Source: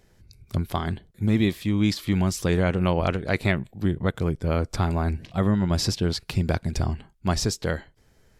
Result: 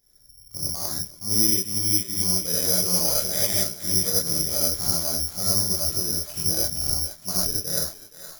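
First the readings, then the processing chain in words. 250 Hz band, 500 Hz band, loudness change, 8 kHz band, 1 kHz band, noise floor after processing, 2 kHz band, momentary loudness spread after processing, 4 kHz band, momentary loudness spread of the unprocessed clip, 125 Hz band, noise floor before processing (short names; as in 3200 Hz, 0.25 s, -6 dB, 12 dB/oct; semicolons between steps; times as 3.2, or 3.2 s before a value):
-9.0 dB, -5.5 dB, +4.0 dB, +15.5 dB, -8.5 dB, -51 dBFS, -9.5 dB, 8 LU, +8.5 dB, 7 LU, -10.0 dB, -60 dBFS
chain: chorus voices 6, 0.48 Hz, delay 25 ms, depth 3.9 ms; thinning echo 0.469 s, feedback 63%, high-pass 640 Hz, level -8.5 dB; dynamic EQ 500 Hz, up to +4 dB, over -40 dBFS, Q 1.2; non-linear reverb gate 0.12 s rising, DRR -6 dB; careless resampling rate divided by 8×, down filtered, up zero stuff; gain -14 dB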